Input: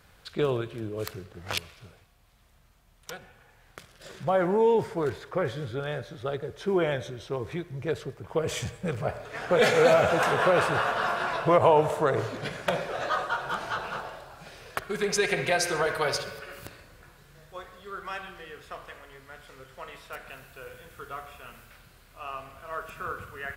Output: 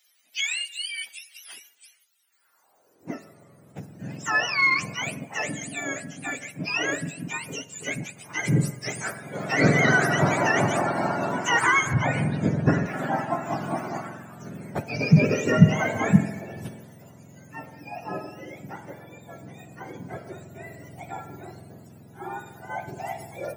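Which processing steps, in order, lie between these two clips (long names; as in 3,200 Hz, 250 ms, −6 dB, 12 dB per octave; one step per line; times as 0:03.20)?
frequency axis turned over on the octave scale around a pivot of 990 Hz
high-pass filter sweep 3,100 Hz → 150 Hz, 0:02.20–0:03.32
in parallel at −10 dB: soft clipping −19.5 dBFS, distortion −8 dB
0:11.93–0:12.86: on the sum: RIAA equalisation playback
level +1 dB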